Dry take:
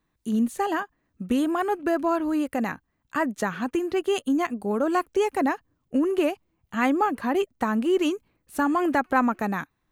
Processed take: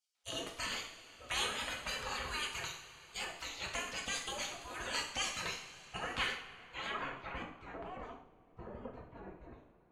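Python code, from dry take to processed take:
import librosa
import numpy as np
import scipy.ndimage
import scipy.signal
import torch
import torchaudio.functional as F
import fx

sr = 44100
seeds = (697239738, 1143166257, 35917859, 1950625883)

y = fx.spec_gate(x, sr, threshold_db=-30, keep='weak')
y = fx.rev_double_slope(y, sr, seeds[0], early_s=0.54, late_s=4.3, knee_db=-18, drr_db=-1.0)
y = fx.filter_sweep_lowpass(y, sr, from_hz=6200.0, to_hz=480.0, start_s=5.81, end_s=8.32, q=0.77)
y = y * librosa.db_to_amplitude(6.0)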